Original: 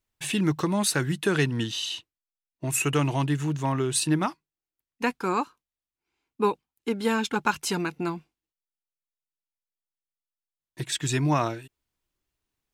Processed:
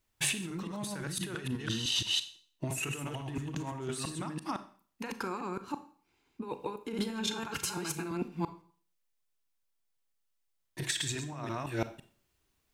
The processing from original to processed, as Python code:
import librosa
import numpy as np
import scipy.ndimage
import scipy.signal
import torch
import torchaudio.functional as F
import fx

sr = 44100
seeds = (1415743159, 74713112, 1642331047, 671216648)

y = fx.reverse_delay(x, sr, ms=169, wet_db=-1.5)
y = fx.peak_eq(y, sr, hz=130.0, db=6.0, octaves=2.5, at=(5.42, 6.49))
y = fx.over_compress(y, sr, threshold_db=-33.0, ratio=-1.0)
y = fx.notch_comb(y, sr, f0_hz=250.0, at=(7.24, 8.06))
y = fx.rev_schroeder(y, sr, rt60_s=0.46, comb_ms=28, drr_db=10.5)
y = F.gain(torch.from_numpy(y), -3.5).numpy()